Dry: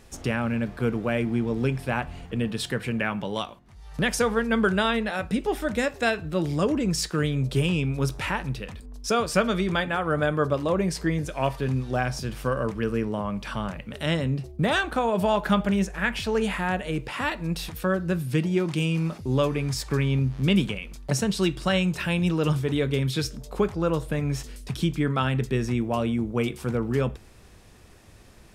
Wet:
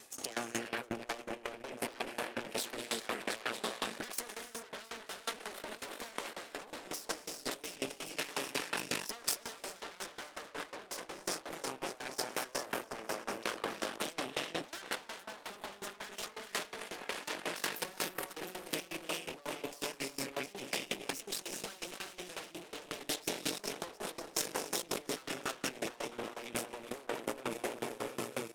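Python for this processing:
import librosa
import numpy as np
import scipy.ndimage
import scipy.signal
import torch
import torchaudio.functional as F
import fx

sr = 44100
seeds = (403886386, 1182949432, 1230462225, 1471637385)

y = fx.spec_quant(x, sr, step_db=15)
y = fx.high_shelf(y, sr, hz=2200.0, db=2.0)
y = fx.echo_swing(y, sr, ms=945, ratio=3, feedback_pct=38, wet_db=-9)
y = fx.rev_gated(y, sr, seeds[0], gate_ms=450, shape='rising', drr_db=2.5)
y = fx.cheby_harmonics(y, sr, harmonics=(4, 6, 8), levels_db=(-20, -34, -10), full_scale_db=-7.0)
y = scipy.signal.sosfilt(scipy.signal.butter(2, 310.0, 'highpass', fs=sr, output='sos'), y)
y = fx.level_steps(y, sr, step_db=11)
y = fx.tube_stage(y, sr, drive_db=21.0, bias=0.25)
y = fx.over_compress(y, sr, threshold_db=-39.0, ratio=-1.0)
y = fx.high_shelf(y, sr, hz=5100.0, db=9.5)
y = fx.tremolo_decay(y, sr, direction='decaying', hz=5.5, depth_db=21)
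y = y * 10.0 ** (2.0 / 20.0)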